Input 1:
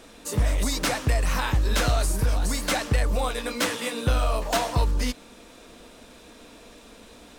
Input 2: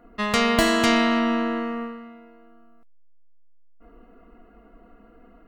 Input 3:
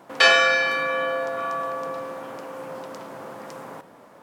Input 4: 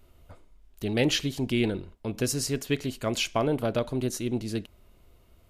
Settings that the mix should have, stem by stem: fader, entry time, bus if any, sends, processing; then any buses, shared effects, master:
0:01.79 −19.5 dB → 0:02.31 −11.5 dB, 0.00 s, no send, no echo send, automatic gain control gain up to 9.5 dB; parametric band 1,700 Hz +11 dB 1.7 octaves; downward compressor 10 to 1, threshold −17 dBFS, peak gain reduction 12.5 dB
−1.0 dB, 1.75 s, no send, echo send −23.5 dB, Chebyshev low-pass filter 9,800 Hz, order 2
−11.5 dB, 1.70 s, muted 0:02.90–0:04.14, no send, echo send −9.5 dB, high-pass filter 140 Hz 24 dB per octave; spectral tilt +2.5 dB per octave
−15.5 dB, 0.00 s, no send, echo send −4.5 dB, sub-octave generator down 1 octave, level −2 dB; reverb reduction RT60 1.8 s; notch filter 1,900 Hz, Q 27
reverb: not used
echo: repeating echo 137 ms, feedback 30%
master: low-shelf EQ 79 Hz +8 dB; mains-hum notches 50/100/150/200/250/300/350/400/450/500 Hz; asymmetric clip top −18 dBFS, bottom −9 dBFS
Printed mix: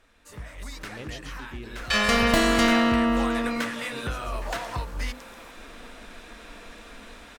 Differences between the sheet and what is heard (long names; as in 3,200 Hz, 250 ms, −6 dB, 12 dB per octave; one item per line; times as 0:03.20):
stem 2: missing Chebyshev low-pass filter 9,800 Hz, order 2
stem 4: missing sub-octave generator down 1 octave, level −2 dB